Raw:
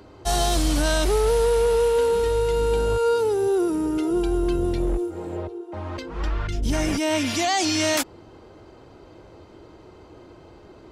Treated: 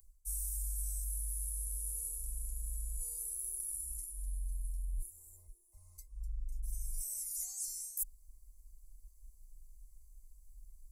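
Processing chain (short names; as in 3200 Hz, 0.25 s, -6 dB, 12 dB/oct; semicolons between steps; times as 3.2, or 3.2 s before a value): inverse Chebyshev band-stop 110–3500 Hz, stop band 60 dB; reverse; compressor 5:1, threshold -50 dBFS, peak gain reduction 18 dB; reverse; small resonant body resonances 1100/2100 Hz, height 16 dB, ringing for 45 ms; gain +13 dB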